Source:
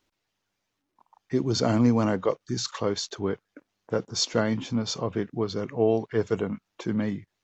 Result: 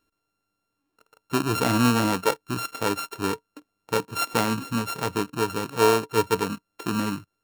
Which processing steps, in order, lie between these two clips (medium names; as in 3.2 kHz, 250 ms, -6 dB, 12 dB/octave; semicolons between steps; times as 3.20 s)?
sorted samples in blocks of 32 samples; small resonant body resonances 300/440/950 Hz, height 7 dB, ringing for 100 ms